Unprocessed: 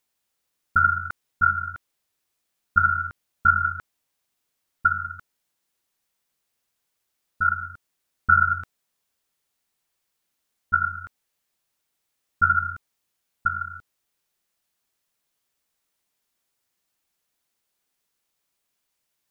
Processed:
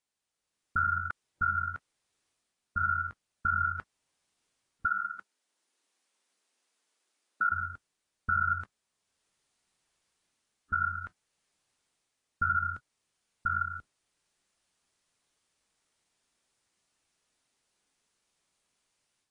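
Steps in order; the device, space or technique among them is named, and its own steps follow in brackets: 4.86–7.52 s: high-pass 230 Hz 24 dB/octave; low-bitrate web radio (level rider gain up to 9 dB; peak limiter -11.5 dBFS, peak gain reduction 10 dB; trim -8 dB; AAC 32 kbps 22.05 kHz)

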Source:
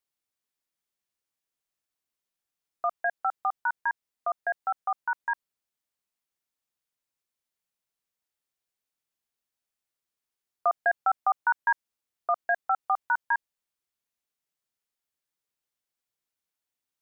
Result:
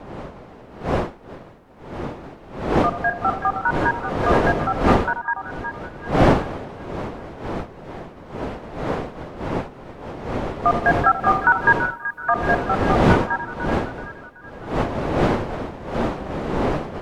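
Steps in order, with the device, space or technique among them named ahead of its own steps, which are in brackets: chunks repeated in reverse 343 ms, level -9 dB; 10.94–12.30 s: tilt shelf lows -9.5 dB, about 910 Hz; two-band feedback delay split 1.2 kHz, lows 83 ms, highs 379 ms, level -10.5 dB; smartphone video outdoors (wind noise 620 Hz -29 dBFS; level rider gain up to 7 dB; AAC 64 kbps 48 kHz)

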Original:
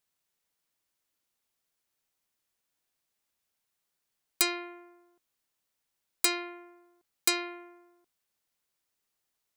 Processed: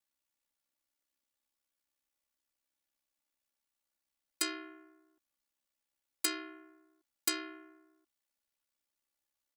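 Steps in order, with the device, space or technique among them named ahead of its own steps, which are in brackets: ring-modulated robot voice (ring modulator 33 Hz; comb 3.5 ms, depth 85%); trim -5.5 dB

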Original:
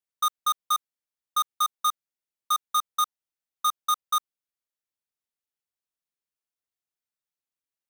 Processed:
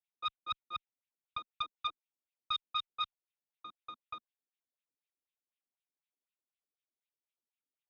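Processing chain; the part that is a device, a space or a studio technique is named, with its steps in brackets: wah-wah guitar rig (wah-wah 4 Hz 230–2800 Hz, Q 3.4; valve stage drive 31 dB, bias 0.4; cabinet simulation 100–3700 Hz, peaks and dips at 1.2 kHz -6 dB, 1.7 kHz -8 dB, 3.7 kHz +8 dB); trim +6.5 dB

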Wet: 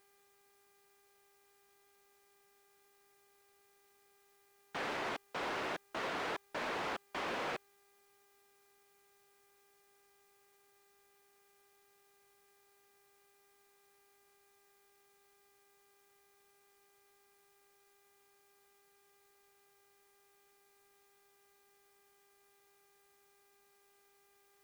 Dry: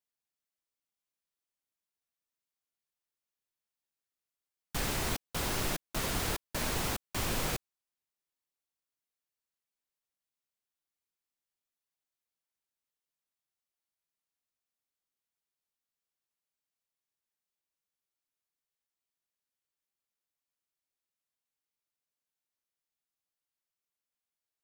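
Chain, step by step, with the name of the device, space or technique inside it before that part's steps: aircraft radio (band-pass 390–2300 Hz; hard clipper -35.5 dBFS, distortion -14 dB; mains buzz 400 Hz, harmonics 6, -74 dBFS -4 dB/octave; white noise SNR 24 dB); trim +1.5 dB

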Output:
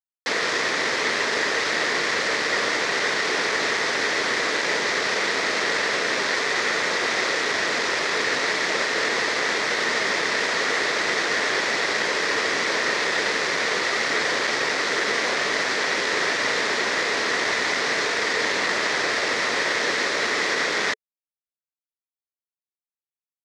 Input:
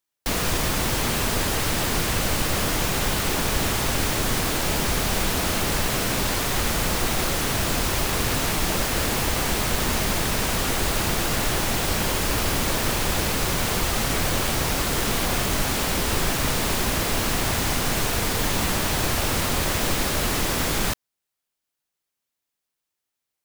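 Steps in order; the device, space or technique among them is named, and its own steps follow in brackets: hand-held game console (bit crusher 4-bit; cabinet simulation 410–5600 Hz, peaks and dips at 440 Hz +6 dB, 790 Hz -4 dB, 1.9 kHz +10 dB, 2.9 kHz -5 dB); trim +1.5 dB

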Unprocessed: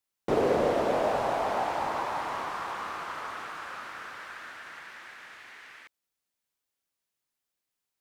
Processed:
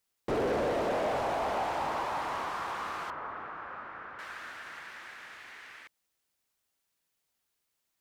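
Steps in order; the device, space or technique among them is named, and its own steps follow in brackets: open-reel tape (saturation -25.5 dBFS, distortion -11 dB; peaking EQ 62 Hz +3.5 dB 1.19 oct; white noise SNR 47 dB); 3.10–4.19 s: low-pass 1.5 kHz 12 dB/octave

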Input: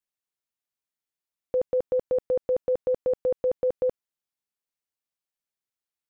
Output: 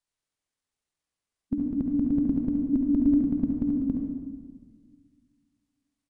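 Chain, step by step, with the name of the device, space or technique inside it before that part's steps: monster voice (pitch shift -9.5 st; formant shift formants -3 st; bass shelf 130 Hz +7.5 dB; delay 70 ms -9 dB; reverberation RT60 1.6 s, pre-delay 47 ms, DRR 3 dB); 2.73–3.23 s: comb 3.2 ms, depth 61%; trim +1 dB

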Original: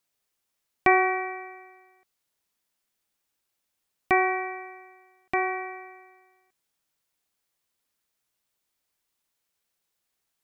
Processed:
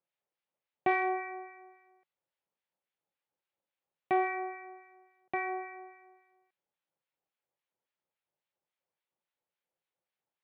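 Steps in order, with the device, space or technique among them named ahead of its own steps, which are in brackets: guitar amplifier with harmonic tremolo (harmonic tremolo 3.6 Hz, depth 70%, crossover 1.2 kHz; saturation -16 dBFS, distortion -17 dB; cabinet simulation 100–3400 Hz, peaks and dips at 160 Hz +5 dB, 250 Hz -3 dB, 360 Hz +3 dB, 540 Hz +9 dB, 840 Hz +6 dB); trim -6 dB

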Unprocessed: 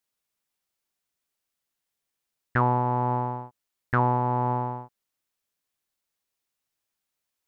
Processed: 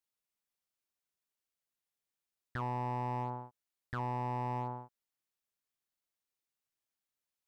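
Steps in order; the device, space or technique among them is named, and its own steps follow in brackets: limiter into clipper (peak limiter -17.5 dBFS, peak gain reduction 7 dB; hard clipper -21 dBFS, distortion -18 dB); trim -8.5 dB

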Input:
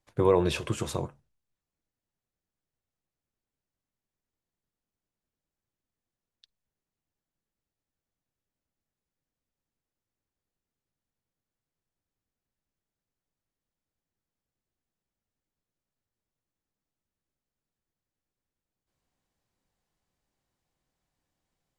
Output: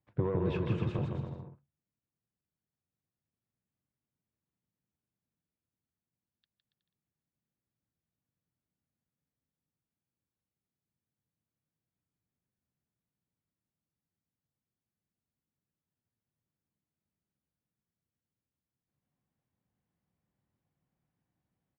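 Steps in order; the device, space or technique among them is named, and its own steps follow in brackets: AM radio (band-pass 120–3300 Hz; compression 6:1, threshold -23 dBFS, peak gain reduction 7 dB; saturation -19.5 dBFS, distortion -18 dB; tremolo 0.24 Hz, depth 28%); tone controls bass +13 dB, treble -12 dB; bouncing-ball echo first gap 160 ms, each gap 0.75×, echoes 5; trim -6.5 dB

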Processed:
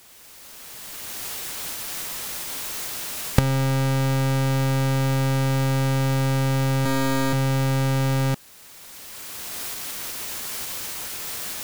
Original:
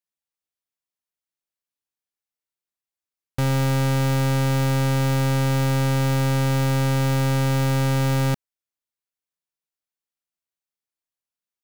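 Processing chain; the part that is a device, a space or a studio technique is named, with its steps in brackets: 6.85–7.33 s: comb 3.2 ms, depth 98%; cheap recorder with automatic gain (white noise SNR 26 dB; recorder AGC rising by 15 dB/s); trim -1 dB

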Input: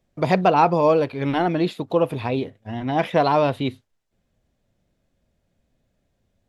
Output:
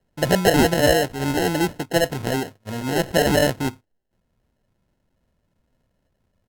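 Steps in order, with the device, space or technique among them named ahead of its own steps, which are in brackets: crushed at another speed (playback speed 1.25×; sample-and-hold 30×; playback speed 0.8×)

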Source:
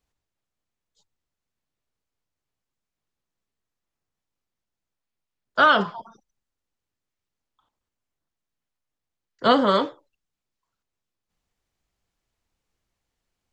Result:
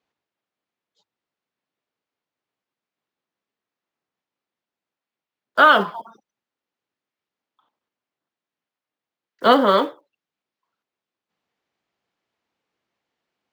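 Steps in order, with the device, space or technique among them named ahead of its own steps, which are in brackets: early digital voice recorder (band-pass 230–3800 Hz; block-companded coder 7-bit); trim +4 dB

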